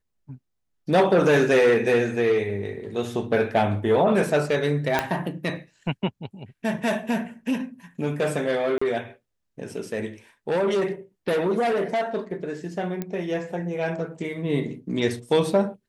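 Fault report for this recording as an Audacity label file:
4.990000	4.990000	pop -7 dBFS
8.780000	8.810000	gap 35 ms
13.020000	13.020000	pop -16 dBFS

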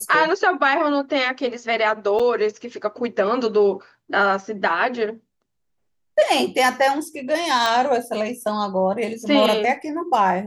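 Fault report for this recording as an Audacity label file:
2.190000	2.200000	gap 5.7 ms
7.660000	7.660000	pop

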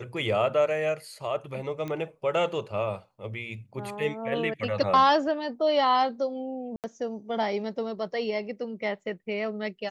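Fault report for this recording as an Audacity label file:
1.880000	1.880000	pop -22 dBFS
6.760000	6.840000	gap 78 ms

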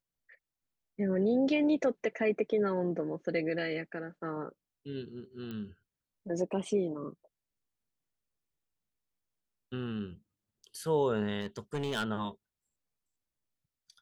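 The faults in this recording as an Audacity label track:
5.510000	5.510000	pop -29 dBFS
11.400000	12.040000	clipped -29 dBFS

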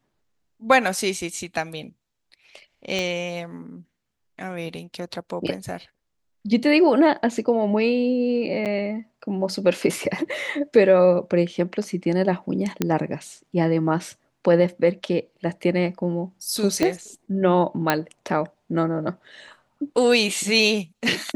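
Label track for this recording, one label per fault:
2.990000	2.990000	pop -13 dBFS
8.650000	8.660000	gap 8 ms
12.820000	12.820000	pop -7 dBFS
16.830000	16.830000	pop -8 dBFS
17.900000	17.900000	pop -4 dBFS

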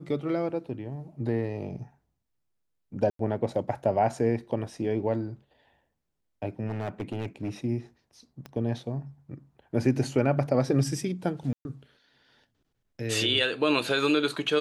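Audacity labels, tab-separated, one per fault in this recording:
3.100000	3.190000	gap 93 ms
6.660000	7.490000	clipped -27 dBFS
8.460000	8.460000	pop -26 dBFS
11.530000	11.650000	gap 0.121 s

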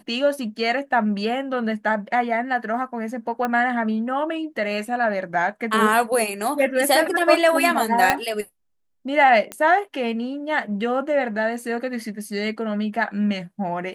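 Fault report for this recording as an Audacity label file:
3.450000	3.450000	pop -12 dBFS
8.100000	8.100000	pop -3 dBFS
9.520000	9.520000	pop -14 dBFS

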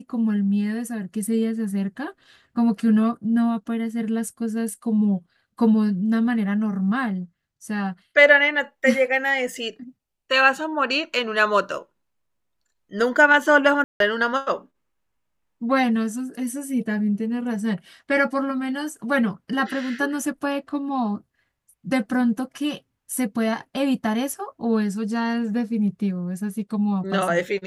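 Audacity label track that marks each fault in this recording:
13.840000	14.000000	gap 0.162 s

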